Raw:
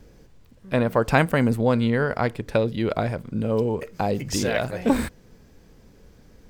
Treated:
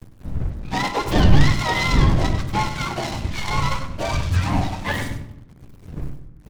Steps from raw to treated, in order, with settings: spectrum mirrored in octaves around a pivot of 690 Hz; wind noise 110 Hz -24 dBFS; in parallel at -2.5 dB: limiter -17.5 dBFS, peak gain reduction 13.5 dB; on the sum: crossover distortion -33 dBFS; feedback echo 98 ms, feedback 17%, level -9.5 dB; on a send at -10 dB: reverb RT60 0.85 s, pre-delay 24 ms; on the sum: noise-modulated delay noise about 1200 Hz, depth 0.043 ms; gain -2 dB

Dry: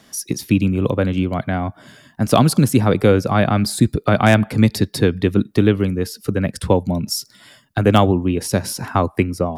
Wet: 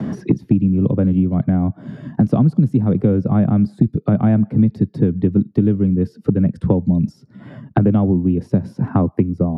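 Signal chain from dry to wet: gate with hold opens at -46 dBFS; band-pass 170 Hz, Q 1.4; three-band squash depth 100%; gain +4.5 dB

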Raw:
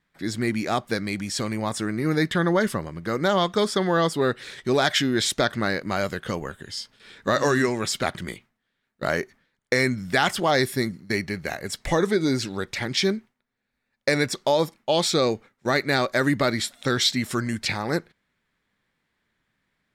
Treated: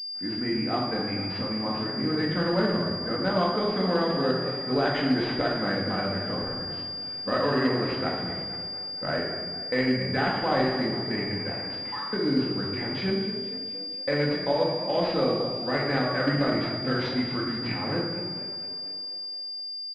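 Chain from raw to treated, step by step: 11.52–12.13 rippled Chebyshev high-pass 850 Hz, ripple 3 dB; frequency-shifting echo 0.234 s, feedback 59%, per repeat +34 Hz, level -12 dB; shoebox room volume 470 m³, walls mixed, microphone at 2 m; pulse-width modulation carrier 4800 Hz; gain -8.5 dB

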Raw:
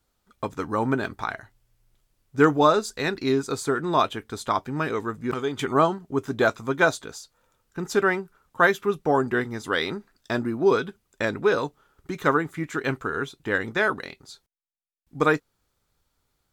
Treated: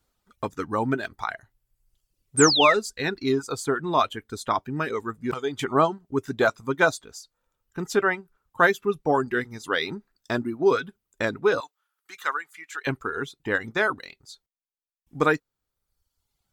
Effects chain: reverb removal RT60 1.1 s; 2.37–2.74 painted sound fall 1700–9000 Hz -22 dBFS; 11.6–12.87 HPF 1300 Hz 12 dB/oct

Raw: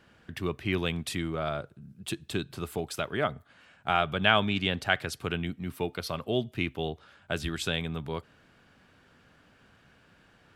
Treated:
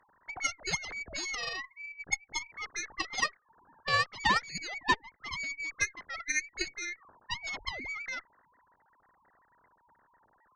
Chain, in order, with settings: sine-wave speech; inverted band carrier 2500 Hz; in parallel at -6 dB: sine folder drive 3 dB, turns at -13.5 dBFS; on the sum: added harmonics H 2 -29 dB, 3 -8 dB, 6 -42 dB, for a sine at -10.5 dBFS; compressor 2:1, threshold -42 dBFS, peak gain reduction 14.5 dB; gain +8.5 dB

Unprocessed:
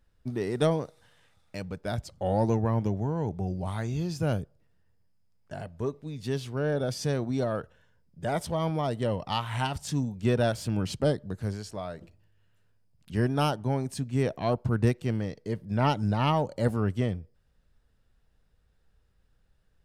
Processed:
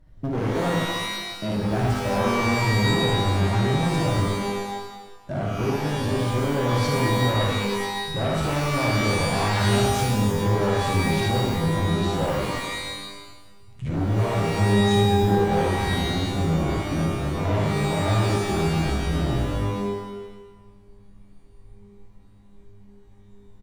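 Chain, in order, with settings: speed glide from 110% -> 58%; tilt shelf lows +6.5 dB, about 1200 Hz; notch 440 Hz, Q 12; in parallel at +3 dB: vocal rider within 4 dB 0.5 s; on the sum: limiter -12 dBFS, peak gain reduction 11 dB; on a send: early reflections 55 ms -3 dB, 74 ms -5 dB; on the sum: flange 0.28 Hz, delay 6.2 ms, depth 9.8 ms, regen -31%; overloaded stage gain 23.5 dB; shimmer reverb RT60 1.1 s, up +12 st, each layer -2 dB, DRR 2.5 dB

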